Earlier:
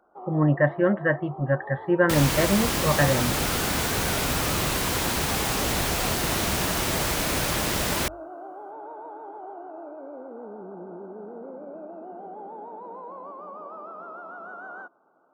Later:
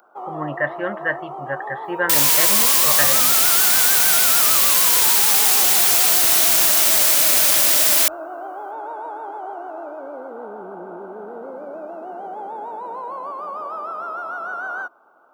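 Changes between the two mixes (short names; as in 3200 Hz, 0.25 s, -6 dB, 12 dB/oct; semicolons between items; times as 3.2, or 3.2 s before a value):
first sound +10.5 dB; master: add tilt +4.5 dB/oct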